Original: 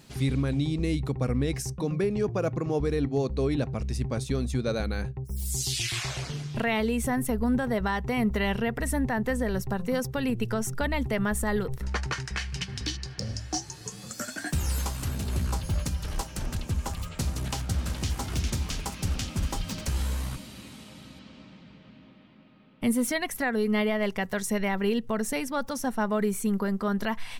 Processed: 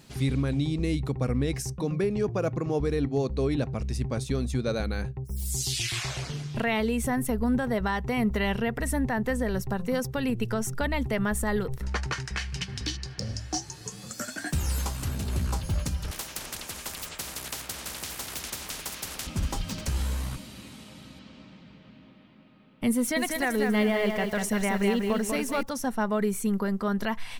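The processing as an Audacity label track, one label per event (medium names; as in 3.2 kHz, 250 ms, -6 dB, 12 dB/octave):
16.110000	19.270000	spectrum-flattening compressor 4:1
22.970000	25.630000	bit-crushed delay 194 ms, feedback 35%, word length 8-bit, level -4 dB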